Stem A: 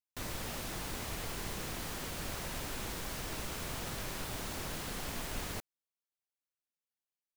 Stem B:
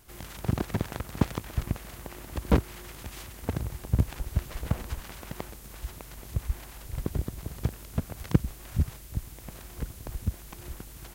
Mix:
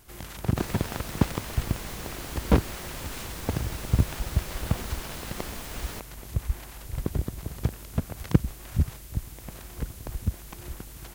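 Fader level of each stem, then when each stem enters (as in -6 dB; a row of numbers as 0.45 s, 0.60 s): +1.0 dB, +2.0 dB; 0.40 s, 0.00 s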